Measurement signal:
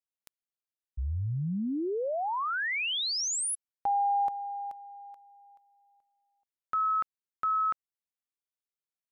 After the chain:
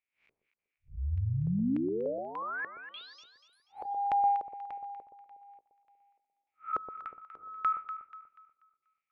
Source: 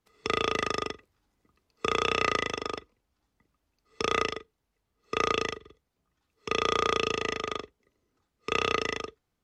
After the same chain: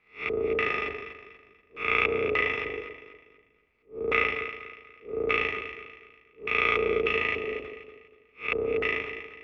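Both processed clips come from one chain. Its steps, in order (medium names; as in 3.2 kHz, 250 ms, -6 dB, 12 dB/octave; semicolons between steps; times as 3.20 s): spectral blur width 133 ms; peaking EQ 2.3 kHz +11.5 dB 0.42 oct; LFO low-pass square 1.7 Hz 450–2400 Hz; on a send: echo whose repeats swap between lows and highs 121 ms, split 890 Hz, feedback 59%, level -6 dB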